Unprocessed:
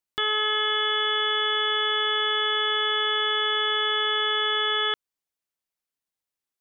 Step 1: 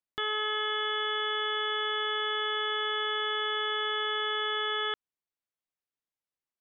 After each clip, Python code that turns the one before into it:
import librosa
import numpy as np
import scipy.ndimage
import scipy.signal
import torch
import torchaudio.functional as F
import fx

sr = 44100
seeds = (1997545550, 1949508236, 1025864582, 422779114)

y = fx.lowpass(x, sr, hz=2900.0, slope=6)
y = y * 10.0 ** (-4.5 / 20.0)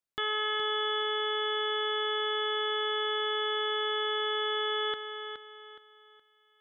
y = fx.echo_feedback(x, sr, ms=419, feedback_pct=34, wet_db=-8.5)